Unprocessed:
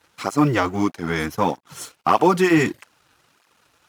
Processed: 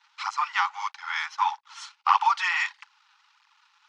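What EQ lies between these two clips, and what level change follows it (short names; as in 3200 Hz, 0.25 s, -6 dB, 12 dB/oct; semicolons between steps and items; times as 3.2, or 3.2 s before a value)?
Chebyshev high-pass 820 Hz, order 8; LPF 5500 Hz 24 dB/oct; notch 1600 Hz, Q 15; 0.0 dB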